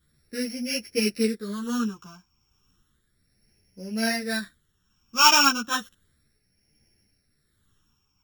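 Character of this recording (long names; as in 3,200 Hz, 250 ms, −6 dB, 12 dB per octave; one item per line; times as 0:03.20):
a buzz of ramps at a fixed pitch in blocks of 8 samples
phaser sweep stages 8, 0.33 Hz, lowest notch 550–1,100 Hz
tremolo triangle 1.2 Hz, depth 50%
a shimmering, thickened sound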